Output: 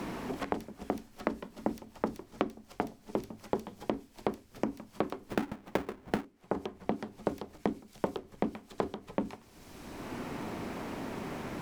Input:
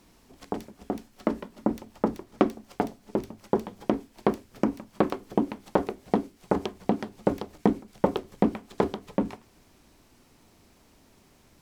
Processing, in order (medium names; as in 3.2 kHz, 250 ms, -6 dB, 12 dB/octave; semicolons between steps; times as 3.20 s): 5.29–6.25 s: square wave that keeps the level; three bands compressed up and down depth 100%; trim -7.5 dB